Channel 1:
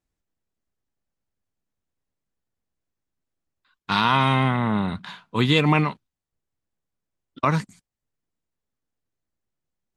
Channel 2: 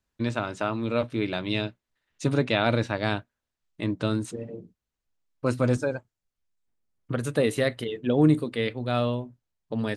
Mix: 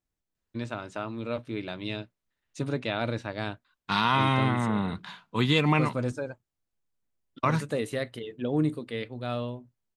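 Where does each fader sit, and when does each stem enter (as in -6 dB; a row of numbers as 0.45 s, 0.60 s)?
-4.5 dB, -6.5 dB; 0.00 s, 0.35 s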